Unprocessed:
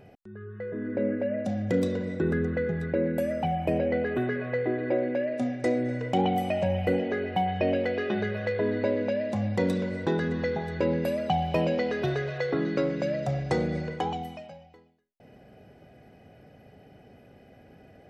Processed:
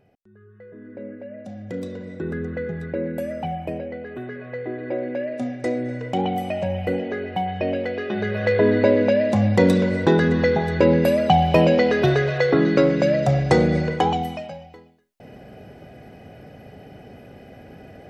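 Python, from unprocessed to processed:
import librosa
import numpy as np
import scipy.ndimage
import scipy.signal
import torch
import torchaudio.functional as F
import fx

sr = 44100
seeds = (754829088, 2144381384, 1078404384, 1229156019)

y = fx.gain(x, sr, db=fx.line((1.25, -8.5), (2.61, 0.0), (3.53, 0.0), (3.97, -7.0), (5.22, 1.5), (8.09, 1.5), (8.53, 10.0)))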